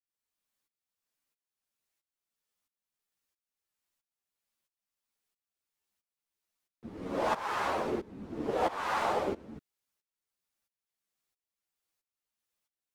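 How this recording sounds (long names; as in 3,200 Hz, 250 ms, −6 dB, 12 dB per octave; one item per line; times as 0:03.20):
tremolo saw up 1.5 Hz, depth 90%
a shimmering, thickened sound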